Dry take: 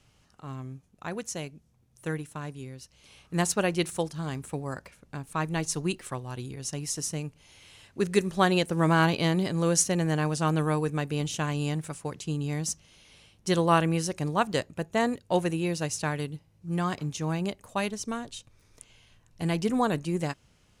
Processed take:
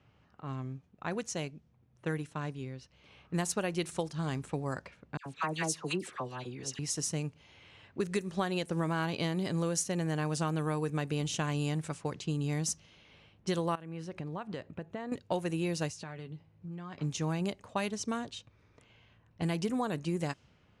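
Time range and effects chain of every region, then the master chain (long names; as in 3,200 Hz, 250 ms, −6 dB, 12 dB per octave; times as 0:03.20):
0:05.17–0:06.79: low-shelf EQ 170 Hz −11.5 dB + all-pass dispersion lows, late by 88 ms, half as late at 1,600 Hz
0:13.75–0:15.12: downward compressor 12 to 1, threshold −34 dBFS + parametric band 5,900 Hz −7 dB 1.5 octaves
0:15.89–0:17.00: double-tracking delay 12 ms −9.5 dB + downward compressor 10 to 1, threshold −39 dBFS
whole clip: high-pass filter 63 Hz; downward compressor 10 to 1, threshold −28 dBFS; low-pass that shuts in the quiet parts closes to 2,200 Hz, open at −27.5 dBFS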